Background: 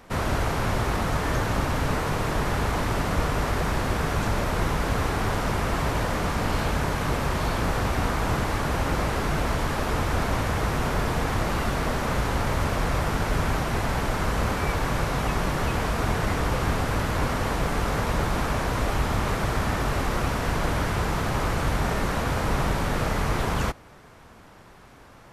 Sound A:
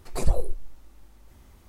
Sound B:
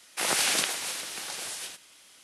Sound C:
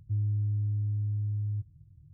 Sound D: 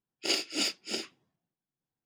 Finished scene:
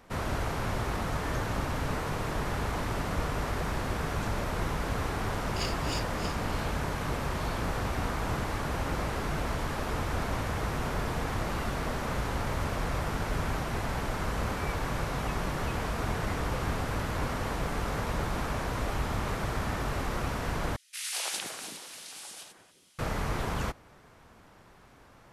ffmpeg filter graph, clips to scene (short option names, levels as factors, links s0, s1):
-filter_complex "[0:a]volume=0.473[s0];[2:a]acrossover=split=440|1700[s1][s2][s3];[s2]adelay=190[s4];[s1]adelay=370[s5];[s5][s4][s3]amix=inputs=3:normalize=0[s6];[s0]asplit=2[s7][s8];[s7]atrim=end=20.764[s9];[s6]atrim=end=2.23,asetpts=PTS-STARTPTS,volume=0.422[s10];[s8]atrim=start=22.986[s11];[4:a]atrim=end=2.05,asetpts=PTS-STARTPTS,volume=0.398,afade=t=in:d=0.004:c=hsin,afade=t=out:st=2.046:d=0.004:c=hsin,adelay=5310[s12];[s9][s10]acrossfade=d=0.004:c1=hsin:c2=hsin[s13];[s13][s11]acrossfade=d=0.004:c1=hsin:c2=hsin[s14];[s14][s12]amix=inputs=2:normalize=0"